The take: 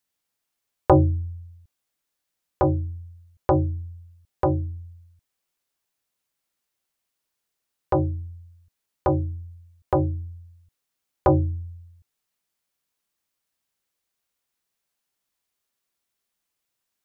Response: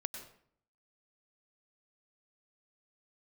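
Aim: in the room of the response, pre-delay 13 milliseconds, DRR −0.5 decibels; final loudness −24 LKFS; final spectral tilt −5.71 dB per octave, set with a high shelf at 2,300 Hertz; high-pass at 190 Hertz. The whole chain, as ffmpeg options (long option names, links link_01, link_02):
-filter_complex "[0:a]highpass=190,highshelf=frequency=2300:gain=8.5,asplit=2[link_01][link_02];[1:a]atrim=start_sample=2205,adelay=13[link_03];[link_02][link_03]afir=irnorm=-1:irlink=0,volume=1dB[link_04];[link_01][link_04]amix=inputs=2:normalize=0,volume=-3dB"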